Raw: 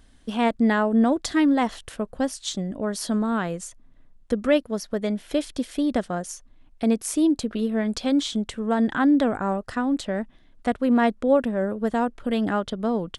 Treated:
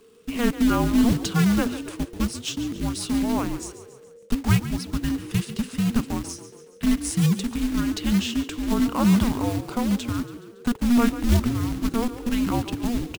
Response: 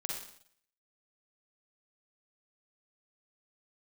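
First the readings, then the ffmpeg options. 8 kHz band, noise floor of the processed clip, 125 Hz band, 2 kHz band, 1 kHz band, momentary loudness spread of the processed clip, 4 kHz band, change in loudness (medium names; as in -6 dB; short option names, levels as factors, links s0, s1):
+2.5 dB, -48 dBFS, +11.0 dB, -2.5 dB, -4.0 dB, 10 LU, +2.0 dB, 0.0 dB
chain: -filter_complex "[0:a]acrusher=bits=3:mode=log:mix=0:aa=0.000001,afreqshift=-480,asplit=6[s0][s1][s2][s3][s4][s5];[s1]adelay=140,afreqshift=36,volume=0.211[s6];[s2]adelay=280,afreqshift=72,volume=0.11[s7];[s3]adelay=420,afreqshift=108,volume=0.0569[s8];[s4]adelay=560,afreqshift=144,volume=0.0299[s9];[s5]adelay=700,afreqshift=180,volume=0.0155[s10];[s0][s6][s7][s8][s9][s10]amix=inputs=6:normalize=0"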